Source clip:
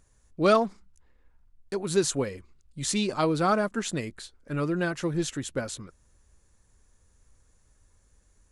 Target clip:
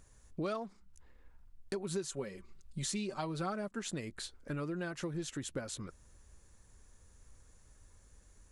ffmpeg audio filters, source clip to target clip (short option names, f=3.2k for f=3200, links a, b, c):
-filter_complex "[0:a]asettb=1/sr,asplit=3[a][b][c];[a]atrim=end=1.734[d];[b]atrim=start=1.73:end=3.68,asetpts=PTS-STARTPTS,afade=t=in:d=0.004:c=qsin,afade=t=out:st=1.946:d=0.004:c=qsin,aecho=1:1:5.2:0.59,atrim=end_sample=85995[e];[c]atrim=start=3.676[f];[d][e]acrossfade=d=0.004:c1=hsin:c2=qsin[g];[g][f]acrossfade=d=0.004:c1=qsin:c2=hsin,acompressor=threshold=-39dB:ratio=5,volume=2dB"